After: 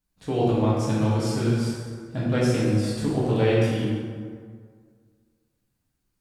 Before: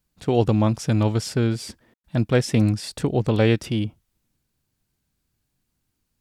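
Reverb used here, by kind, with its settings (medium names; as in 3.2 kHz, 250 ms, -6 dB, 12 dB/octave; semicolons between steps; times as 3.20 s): plate-style reverb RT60 1.9 s, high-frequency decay 0.55×, DRR -7.5 dB; trim -9.5 dB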